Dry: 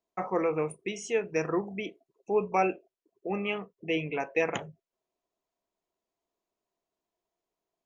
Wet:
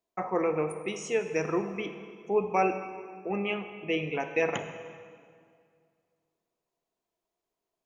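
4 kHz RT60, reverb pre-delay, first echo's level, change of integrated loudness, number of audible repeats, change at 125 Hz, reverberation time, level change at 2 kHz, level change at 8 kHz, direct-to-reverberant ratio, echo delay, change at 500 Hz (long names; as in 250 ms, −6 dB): 1.7 s, 32 ms, no echo audible, +0.5 dB, no echo audible, +0.5 dB, 2.2 s, +0.5 dB, +0.5 dB, 8.5 dB, no echo audible, +0.5 dB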